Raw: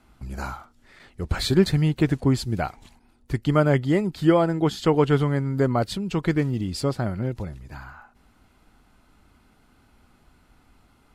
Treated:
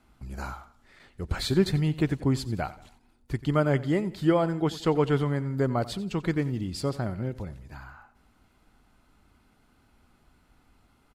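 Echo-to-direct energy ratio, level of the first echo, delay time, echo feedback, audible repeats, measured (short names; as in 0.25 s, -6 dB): -16.5 dB, -17.5 dB, 90 ms, 42%, 3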